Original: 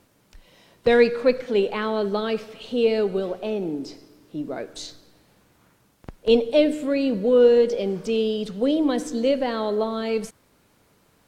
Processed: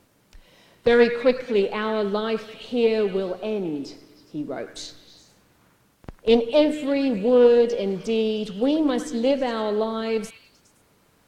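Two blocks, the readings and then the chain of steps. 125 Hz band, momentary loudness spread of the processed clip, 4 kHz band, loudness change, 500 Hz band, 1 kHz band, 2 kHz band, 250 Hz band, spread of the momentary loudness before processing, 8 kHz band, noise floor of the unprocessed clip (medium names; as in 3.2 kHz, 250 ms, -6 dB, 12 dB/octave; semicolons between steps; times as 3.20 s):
+0.5 dB, 15 LU, 0.0 dB, 0.0 dB, 0.0 dB, +1.0 dB, +0.5 dB, +0.5 dB, 15 LU, no reading, -62 dBFS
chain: repeats whose band climbs or falls 103 ms, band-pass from 1.5 kHz, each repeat 0.7 oct, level -8 dB; loudspeaker Doppler distortion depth 0.14 ms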